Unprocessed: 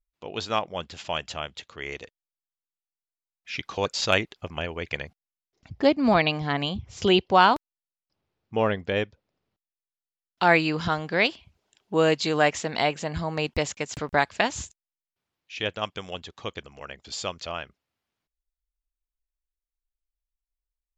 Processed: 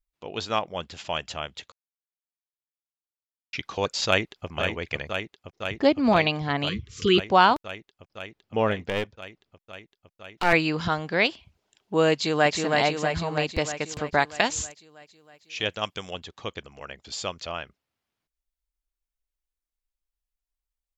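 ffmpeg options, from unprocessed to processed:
-filter_complex "[0:a]asplit=2[a][b];[b]afade=t=in:st=4.07:d=0.01,afade=t=out:st=4.48:d=0.01,aecho=0:1:510|1020|1530|2040|2550|3060|3570|4080|4590|5100|5610|6120:0.473151|0.402179|0.341852|0.290574|0.246988|0.20994|0.178449|0.151681|0.128929|0.10959|0.0931514|0.0791787[c];[a][c]amix=inputs=2:normalize=0,asettb=1/sr,asplit=3[d][e][f];[d]atrim=end=6.694[g];[e]atrim=start=6.69:end=7.18,asetpts=PTS-STARTPTS,afade=t=in:d=0.004:c=qsin,afade=t=out:st=0.486:d=0.004:c=qsin,asuperstop=centerf=730:order=20:qfactor=1.3[h];[f]atrim=start=7.176[i];[g][h]acrossfade=d=0.004:c1=hsin:c2=qsin[j];[j][i]acrossfade=d=0.004:c1=qsin:c2=hsin,asettb=1/sr,asplit=3[k][l][m];[k]atrim=end=8.824[n];[l]atrim=start=8.82:end=10.53,asetpts=PTS-STARTPTS,afade=t=in:d=0.004:c=qsin,afade=t=out:st=1.706:d=0.004:c=qsin,aeval=exprs='clip(val(0),-1,0.0316)':c=same[o];[m]atrim=start=10.526[p];[n][o]acrossfade=d=0.004:c1=hsin:c2=qsin[q];[q][p]acrossfade=d=0.004:c1=qsin:c2=hsin,asplit=2[r][s];[s]afade=t=in:st=12.13:d=0.01,afade=t=out:st=12.55:d=0.01,aecho=0:1:320|640|960|1280|1600|1920|2240|2560|2880|3200:0.707946|0.460165|0.299107|0.19442|0.126373|0.0821423|0.0533925|0.0347051|0.0225583|0.0146629[t];[r][t]amix=inputs=2:normalize=0,asettb=1/sr,asplit=3[u][v][w];[u]atrim=end=14.294[x];[v]atrim=start=14.29:end=16.11,asetpts=PTS-STARTPTS,afade=t=in:d=0.004:c=qsin,afade=t=out:st=1.816:d=0.004:c=qsin,aemphasis=mode=production:type=cd[y];[w]atrim=start=16.106[z];[x][y]acrossfade=d=0.004:c1=hsin:c2=qsin[aa];[aa][z]acrossfade=d=0.004:c1=qsin:c2=hsin,asplit=3[ab][ac][ad];[ab]atrim=end=1.72,asetpts=PTS-STARTPTS,afade=t=out:st=1.716:d=0.004:c=hsin[ae];[ac]atrim=start=1.72:end=3.53,asetpts=PTS-STARTPTS,volume=0[af];[ad]atrim=start=3.53,asetpts=PTS-STARTPTS,afade=t=in:d=0.004:c=hsin[ag];[ae][af][ag]concat=n=3:v=0:a=1"

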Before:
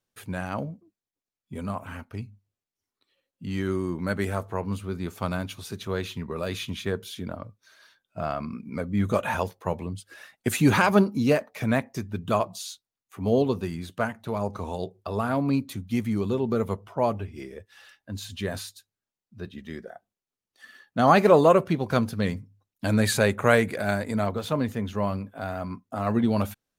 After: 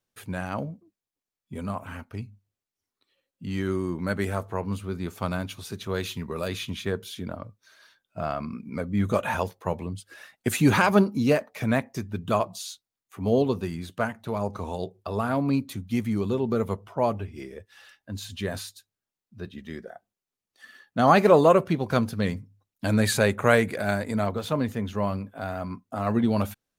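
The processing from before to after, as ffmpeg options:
-filter_complex "[0:a]asettb=1/sr,asplit=3[a][b][c];[a]atrim=end=5.944[d];[b]atrim=start=5.94:end=6.48,asetpts=PTS-STARTPTS,afade=t=in:d=0.004:c=qsin,afade=t=out:st=0.536:d=0.004:c=qsin,highshelf=f=4.4k:g=7.5[e];[c]atrim=start=6.476[f];[d][e]acrossfade=d=0.004:c1=hsin:c2=qsin[g];[g][f]acrossfade=d=0.004:c1=qsin:c2=hsin"

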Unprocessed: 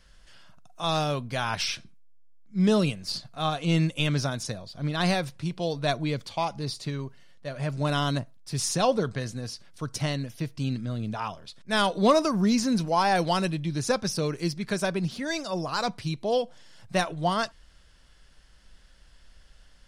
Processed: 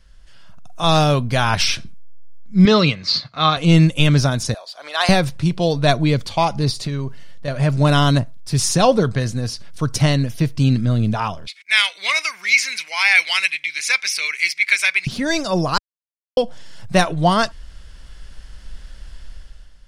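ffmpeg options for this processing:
-filter_complex "[0:a]asettb=1/sr,asplit=3[a][b][c];[a]atrim=end=2.654[d];[b]atrim=start=2.65:end=3.57,asetpts=PTS-STARTPTS,afade=t=in:d=0.004:c=qsin,afade=t=out:st=0.916:d=0.004:c=qsin,highpass=140,equalizer=f=200:t=q:w=4:g=-6,equalizer=f=360:t=q:w=4:g=-4,equalizer=f=700:t=q:w=4:g=-5,equalizer=f=1.2k:t=q:w=4:g=7,equalizer=f=2.1k:t=q:w=4:g=9,equalizer=f=4.1k:t=q:w=4:g=8,lowpass=f=5.6k:w=0.5412,lowpass=f=5.6k:w=1.3066[e];[c]atrim=start=3.566[f];[d][e]acrossfade=d=0.004:c1=hsin:c2=qsin[g];[g][f]acrossfade=d=0.004:c1=qsin:c2=hsin,asettb=1/sr,asplit=3[h][i][j];[h]atrim=end=4.544[k];[i]atrim=start=4.54:end=5.09,asetpts=PTS-STARTPTS,afade=t=in:d=0.004:c=qsin,afade=t=out:st=0.546:d=0.004:c=qsin,highpass=f=620:w=0.5412,highpass=f=620:w=1.3066[l];[j]atrim=start=5.086[m];[k][l]acrossfade=d=0.004:c1=hsin:c2=qsin[n];[n][m]acrossfade=d=0.004:c1=qsin:c2=hsin,asettb=1/sr,asplit=3[o][p][q];[o]atrim=end=6.714[r];[p]atrim=start=6.71:end=7.48,asetpts=PTS-STARTPTS,afade=t=in:d=0.004:c=qsin,afade=t=out:st=0.766:d=0.004:c=qsin,acompressor=threshold=-34dB:ratio=5:attack=3.2:release=140:knee=1:detection=peak[s];[q]atrim=start=7.476[t];[r][s]acrossfade=d=0.004:c1=hsin:c2=qsin[u];[u][t]acrossfade=d=0.004:c1=qsin:c2=hsin,asettb=1/sr,asplit=3[v][w][x];[v]atrim=end=11.474[y];[w]atrim=start=11.47:end=15.07,asetpts=PTS-STARTPTS,afade=t=in:d=0.004:c=qsin,afade=t=out:st=3.596:d=0.004:c=qsin,highpass=f=2.2k:t=q:w=14[z];[x]atrim=start=15.066[aa];[y][z]acrossfade=d=0.004:c1=hsin:c2=qsin[ab];[ab][aa]acrossfade=d=0.004:c1=qsin:c2=hsin,asplit=3[ac][ad][ae];[ac]atrim=end=15.78,asetpts=PTS-STARTPTS,afade=t=out:st=15.776:d=0.004:c=hsin[af];[ad]atrim=start=15.78:end=16.37,asetpts=PTS-STARTPTS,volume=0[ag];[ae]atrim=start=16.37,asetpts=PTS-STARTPTS,afade=t=in:d=0.004:c=hsin[ah];[af][ag][ah]concat=n=3:v=0:a=1,lowshelf=f=100:g=10,dynaudnorm=f=170:g=7:m=11.5dB"

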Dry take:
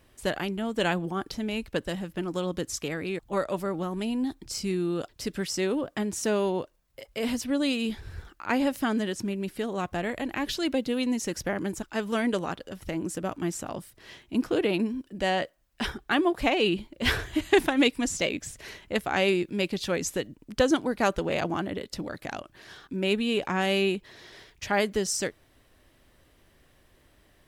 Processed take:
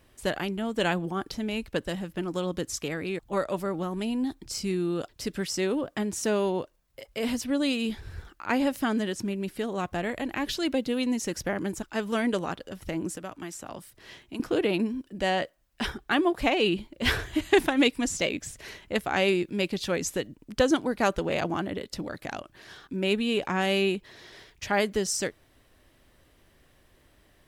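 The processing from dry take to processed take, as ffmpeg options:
-filter_complex "[0:a]asettb=1/sr,asplit=3[a][b][c];[a]atrim=end=13.134[d];[b]atrim=start=13.13:end=14.4,asetpts=PTS-STARTPTS,afade=t=in:d=0.004:c=qsin,afade=t=out:st=1.266:d=0.004:c=qsin,acrossover=split=310|780[e][f][g];[e]acompressor=threshold=-45dB:ratio=4[h];[f]acompressor=threshold=-43dB:ratio=4[i];[g]acompressor=threshold=-39dB:ratio=4[j];[h][i][j]amix=inputs=3:normalize=0[k];[c]atrim=start=14.396[l];[d][k]acrossfade=d=0.004:c1=hsin:c2=qsin[m];[m][l]acrossfade=d=0.004:c1=qsin:c2=hsin"

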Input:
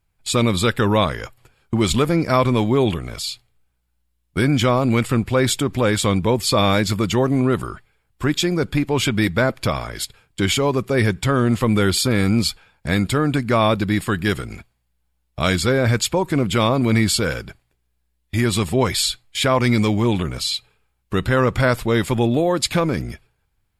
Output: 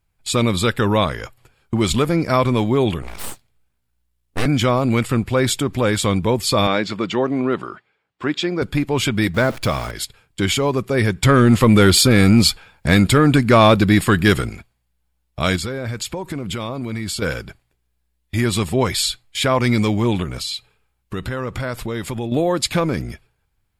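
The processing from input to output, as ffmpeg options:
-filter_complex "[0:a]asettb=1/sr,asplit=3[a][b][c];[a]atrim=end=3.024[d];[b]atrim=start=3.02:end=4.46,asetpts=PTS-STARTPTS,afade=t=in:d=0.004:c=qsin,afade=t=out:st=1.436:d=0.004:c=qsin,aeval=exprs='abs(val(0))':c=same[e];[c]atrim=start=4.456[f];[d][e]acrossfade=d=0.004:c1=hsin:c2=qsin[g];[g][f]acrossfade=d=0.004:c1=qsin:c2=hsin,asettb=1/sr,asplit=3[h][i][j];[h]atrim=end=6.674[k];[i]atrim=start=6.67:end=8.62,asetpts=PTS-STARTPTS,afade=t=in:d=0.004:c=qsin,afade=t=out:st=1.946:d=0.004:c=qsin,highpass=220,lowpass=4k[l];[j]atrim=start=8.616[m];[k][l]acrossfade=d=0.004:c1=hsin:c2=qsin[n];[n][m]acrossfade=d=0.004:c1=qsin:c2=hsin,asettb=1/sr,asplit=3[o][p][q];[o]atrim=end=9.344[r];[p]atrim=start=9.34:end=9.91,asetpts=PTS-STARTPTS,afade=t=in:d=0.004:c=qsin,afade=t=out:st=0.566:d=0.004:c=qsin,aeval=exprs='val(0)+0.5*0.0316*sgn(val(0))':c=same[s];[q]atrim=start=9.906[t];[r][s]acrossfade=d=0.004:c1=hsin:c2=qsin[u];[u][t]acrossfade=d=0.004:c1=qsin:c2=hsin,asettb=1/sr,asplit=3[v][w][x];[v]atrim=end=11.234[y];[w]atrim=start=11.23:end=14.5,asetpts=PTS-STARTPTS,afade=t=in:d=0.004:c=qsin,afade=t=out:st=3.266:d=0.004:c=qsin,acontrast=74[z];[x]atrim=start=14.496[aa];[y][z]acrossfade=d=0.004:c1=hsin:c2=qsin[ab];[ab][aa]acrossfade=d=0.004:c1=qsin:c2=hsin,asettb=1/sr,asplit=3[ac][ad][ae];[ac]atrim=end=15.564[af];[ad]atrim=start=15.56:end=17.22,asetpts=PTS-STARTPTS,afade=t=in:d=0.004:c=qsin,afade=t=out:st=1.656:d=0.004:c=qsin,acompressor=threshold=-22dB:ratio=6:attack=3.2:release=140:knee=1:detection=peak[ag];[ae]atrim=start=17.216[ah];[af][ag]acrossfade=d=0.004:c1=hsin:c2=qsin[ai];[ai][ah]acrossfade=d=0.004:c1=qsin:c2=hsin,asettb=1/sr,asplit=3[aj][ak][al];[aj]atrim=end=20.244[am];[ak]atrim=start=20.24:end=22.32,asetpts=PTS-STARTPTS,afade=t=in:d=0.004:c=qsin,afade=t=out:st=2.076:d=0.004:c=qsin,acompressor=threshold=-23dB:ratio=3:attack=3.2:release=140:knee=1:detection=peak[an];[al]atrim=start=22.316[ao];[am][an]acrossfade=d=0.004:c1=hsin:c2=qsin[ap];[ap][ao]acrossfade=d=0.004:c1=qsin:c2=hsin"

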